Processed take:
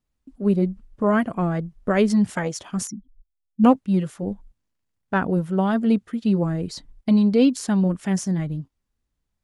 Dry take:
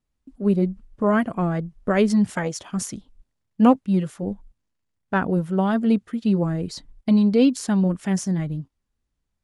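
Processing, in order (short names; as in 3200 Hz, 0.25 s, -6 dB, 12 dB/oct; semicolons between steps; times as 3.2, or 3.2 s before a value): 2.87–3.64 spectral contrast raised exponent 2.7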